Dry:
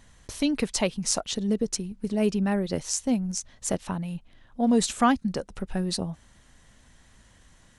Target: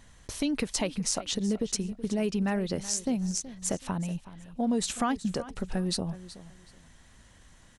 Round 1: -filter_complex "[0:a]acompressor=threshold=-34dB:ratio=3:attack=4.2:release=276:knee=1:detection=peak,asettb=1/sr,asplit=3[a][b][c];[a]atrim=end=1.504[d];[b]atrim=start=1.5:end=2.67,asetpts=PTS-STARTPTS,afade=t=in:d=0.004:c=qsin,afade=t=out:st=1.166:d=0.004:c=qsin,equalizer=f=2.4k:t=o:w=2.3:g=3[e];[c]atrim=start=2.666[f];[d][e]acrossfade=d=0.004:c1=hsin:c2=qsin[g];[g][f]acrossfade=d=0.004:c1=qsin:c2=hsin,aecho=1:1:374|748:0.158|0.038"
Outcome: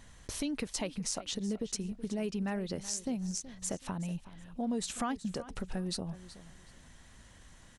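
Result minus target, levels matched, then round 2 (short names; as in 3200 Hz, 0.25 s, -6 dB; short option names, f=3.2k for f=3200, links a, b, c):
compressor: peak gain reduction +6.5 dB
-filter_complex "[0:a]acompressor=threshold=-24.5dB:ratio=3:attack=4.2:release=276:knee=1:detection=peak,asettb=1/sr,asplit=3[a][b][c];[a]atrim=end=1.504[d];[b]atrim=start=1.5:end=2.67,asetpts=PTS-STARTPTS,afade=t=in:d=0.004:c=qsin,afade=t=out:st=1.166:d=0.004:c=qsin,equalizer=f=2.4k:t=o:w=2.3:g=3[e];[c]atrim=start=2.666[f];[d][e]acrossfade=d=0.004:c1=hsin:c2=qsin[g];[g][f]acrossfade=d=0.004:c1=qsin:c2=hsin,aecho=1:1:374|748:0.158|0.038"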